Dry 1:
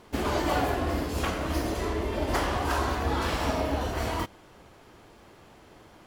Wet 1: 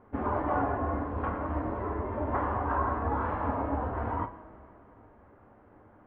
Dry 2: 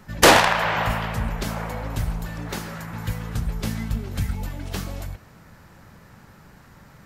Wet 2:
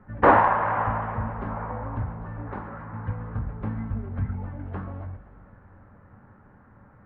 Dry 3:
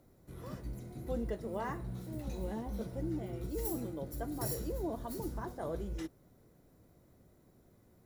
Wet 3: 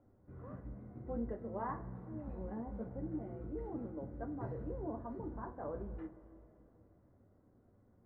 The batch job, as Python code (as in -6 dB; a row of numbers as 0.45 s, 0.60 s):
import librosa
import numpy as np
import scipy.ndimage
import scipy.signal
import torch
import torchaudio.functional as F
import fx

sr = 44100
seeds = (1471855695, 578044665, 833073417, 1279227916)

y = scipy.signal.sosfilt(scipy.signal.butter(4, 1600.0, 'lowpass', fs=sr, output='sos'), x)
y = fx.rev_double_slope(y, sr, seeds[0], early_s=0.21, late_s=3.2, knee_db=-19, drr_db=5.0)
y = fx.dynamic_eq(y, sr, hz=1000.0, q=2.3, threshold_db=-45.0, ratio=4.0, max_db=6)
y = y * 10.0 ** (-5.0 / 20.0)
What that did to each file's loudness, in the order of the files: -2.5 LU, -3.5 LU, -4.0 LU